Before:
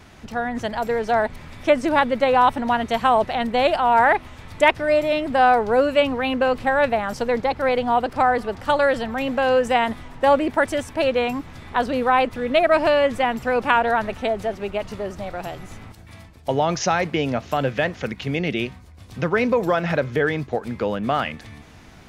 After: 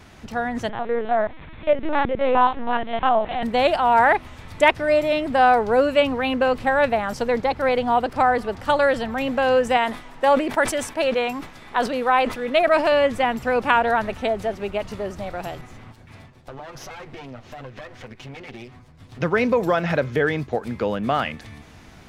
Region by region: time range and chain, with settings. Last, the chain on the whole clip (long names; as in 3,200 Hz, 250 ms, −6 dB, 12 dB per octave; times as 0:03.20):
0:00.69–0:03.43: spectrum averaged block by block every 50 ms + linear-prediction vocoder at 8 kHz pitch kept
0:09.77–0:12.92: parametric band 70 Hz −14 dB 2.6 octaves + level that may fall only so fast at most 120 dB per second
0:15.61–0:19.21: lower of the sound and its delayed copy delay 8 ms + low-pass filter 3,900 Hz 6 dB per octave + downward compressor 4 to 1, threshold −36 dBFS
whole clip: no processing